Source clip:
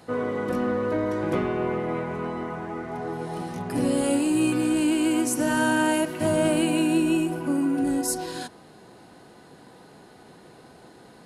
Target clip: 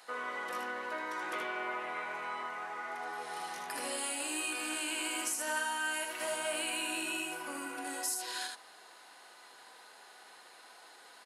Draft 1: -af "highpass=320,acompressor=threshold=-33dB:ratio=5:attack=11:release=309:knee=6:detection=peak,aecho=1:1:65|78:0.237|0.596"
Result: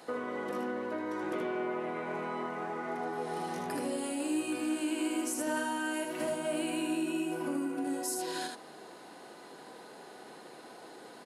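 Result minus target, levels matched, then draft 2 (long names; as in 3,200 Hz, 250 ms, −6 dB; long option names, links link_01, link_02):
250 Hz band +11.0 dB
-af "highpass=1100,acompressor=threshold=-33dB:ratio=5:attack=11:release=309:knee=6:detection=peak,aecho=1:1:65|78:0.237|0.596"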